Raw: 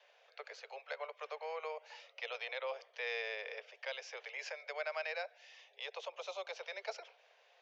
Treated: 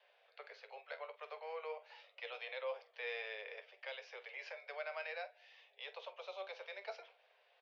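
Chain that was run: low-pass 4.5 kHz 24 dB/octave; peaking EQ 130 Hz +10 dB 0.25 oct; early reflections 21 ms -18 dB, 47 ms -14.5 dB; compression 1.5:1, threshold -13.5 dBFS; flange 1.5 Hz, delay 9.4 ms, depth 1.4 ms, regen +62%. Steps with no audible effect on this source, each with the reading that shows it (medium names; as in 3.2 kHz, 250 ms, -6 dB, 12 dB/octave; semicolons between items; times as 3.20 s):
peaking EQ 130 Hz: input has nothing below 360 Hz; compression, threshold -13.5 dBFS: peak at its input -26.5 dBFS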